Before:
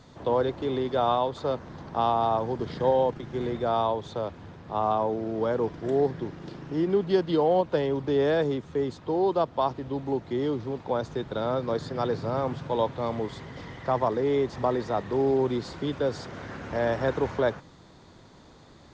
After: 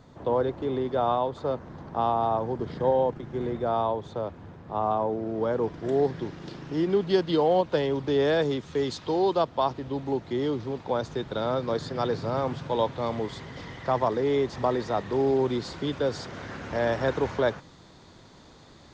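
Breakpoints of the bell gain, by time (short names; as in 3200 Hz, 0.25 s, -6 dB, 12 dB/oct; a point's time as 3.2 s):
bell 4800 Hz 2.5 oct
5.19 s -6.5 dB
6.19 s +5 dB
8.38 s +5 dB
9 s +14 dB
9.55 s +3.5 dB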